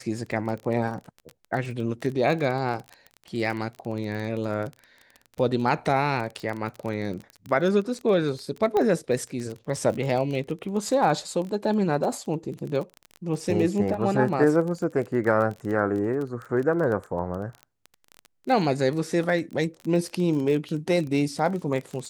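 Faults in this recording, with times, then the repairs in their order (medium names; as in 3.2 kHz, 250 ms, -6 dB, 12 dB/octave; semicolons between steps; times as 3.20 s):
crackle 23 per s -30 dBFS
8.77 s: pop -14 dBFS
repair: de-click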